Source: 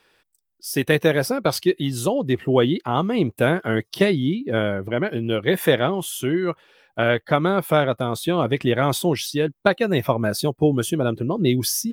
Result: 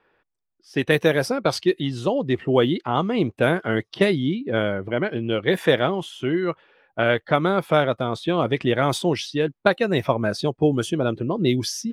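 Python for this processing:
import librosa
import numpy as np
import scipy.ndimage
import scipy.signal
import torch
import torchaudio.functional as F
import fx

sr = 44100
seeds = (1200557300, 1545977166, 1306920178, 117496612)

y = fx.low_shelf(x, sr, hz=210.0, db=-3.0)
y = fx.env_lowpass(y, sr, base_hz=1600.0, full_db=-14.0)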